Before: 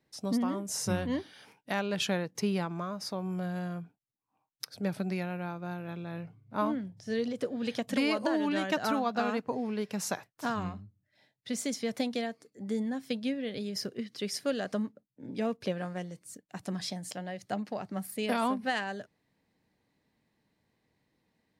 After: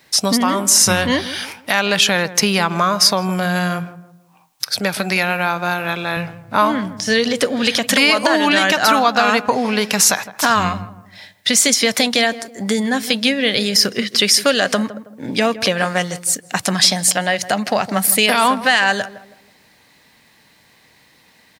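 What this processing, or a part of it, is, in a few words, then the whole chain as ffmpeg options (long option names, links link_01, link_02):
mastering chain: -filter_complex "[0:a]equalizer=frequency=360:width_type=o:width=0.77:gain=-2.5,acompressor=threshold=-34dB:ratio=2.5,tiltshelf=frequency=740:gain=-7.5,alimiter=level_in=23.5dB:limit=-1dB:release=50:level=0:latency=1,asettb=1/sr,asplit=3[link_01][link_02][link_03];[link_01]atrim=end=4.794[link_04];[link_02]atrim=start=4.79:end=6.17,asetpts=PTS-STARTPTS,afade=type=in:duration=0.004:curve=qsin,afade=type=out:start_time=1.376:duration=0.004:curve=qsin,highpass=frequency=230:poles=1[link_05];[link_03]atrim=start=6.166[link_06];[link_04][link_05]acrossfade=duration=0.004:curve1=hsin:curve2=qsin[link_07];[link_07][link_06]acrossfade=duration=0.004:curve1=qsin:curve2=hsin,asplit=2[link_08][link_09];[link_09]adelay=161,lowpass=frequency=1000:poles=1,volume=-13.5dB,asplit=2[link_10][link_11];[link_11]adelay=161,lowpass=frequency=1000:poles=1,volume=0.39,asplit=2[link_12][link_13];[link_13]adelay=161,lowpass=frequency=1000:poles=1,volume=0.39,asplit=2[link_14][link_15];[link_15]adelay=161,lowpass=frequency=1000:poles=1,volume=0.39[link_16];[link_08][link_10][link_12][link_14][link_16]amix=inputs=5:normalize=0,volume=-1dB"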